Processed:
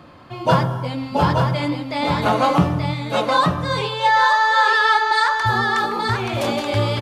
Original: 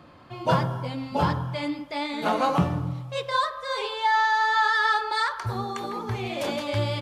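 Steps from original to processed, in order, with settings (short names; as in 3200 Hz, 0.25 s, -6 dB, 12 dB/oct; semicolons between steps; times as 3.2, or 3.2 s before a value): echo 0.879 s -4.5 dB; gain +6 dB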